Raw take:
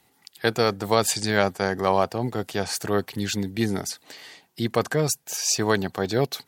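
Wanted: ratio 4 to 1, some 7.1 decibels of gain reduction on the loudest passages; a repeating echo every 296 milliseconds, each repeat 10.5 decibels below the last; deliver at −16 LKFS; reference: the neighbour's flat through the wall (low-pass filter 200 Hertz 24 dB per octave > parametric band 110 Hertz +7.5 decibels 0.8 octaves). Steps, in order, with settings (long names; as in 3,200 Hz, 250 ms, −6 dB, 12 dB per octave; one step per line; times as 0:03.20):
downward compressor 4 to 1, threshold −23 dBFS
low-pass filter 200 Hz 24 dB per octave
parametric band 110 Hz +7.5 dB 0.8 octaves
repeating echo 296 ms, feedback 30%, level −10.5 dB
level +17 dB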